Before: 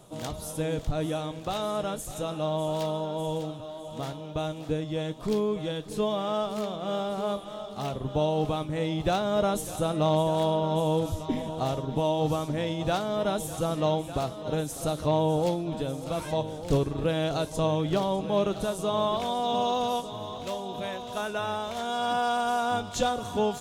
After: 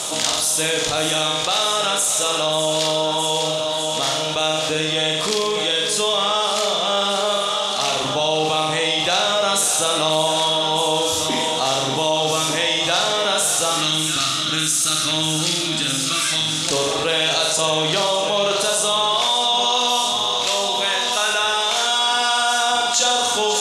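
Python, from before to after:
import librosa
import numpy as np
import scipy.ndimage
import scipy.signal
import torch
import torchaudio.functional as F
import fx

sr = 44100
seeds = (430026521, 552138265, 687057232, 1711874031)

p1 = fx.weighting(x, sr, curve='ITU-R 468')
p2 = p1 + 10.0 ** (-15.0 / 20.0) * np.pad(p1, (int(541 * sr / 1000.0), 0))[:len(p1)]
p3 = fx.spec_box(p2, sr, start_s=13.74, length_s=2.94, low_hz=360.0, high_hz=1100.0, gain_db=-15)
p4 = p3 + fx.room_flutter(p3, sr, wall_m=7.7, rt60_s=0.64, dry=0)
p5 = fx.env_flatten(p4, sr, amount_pct=70)
y = F.gain(torch.from_numpy(p5), 3.0).numpy()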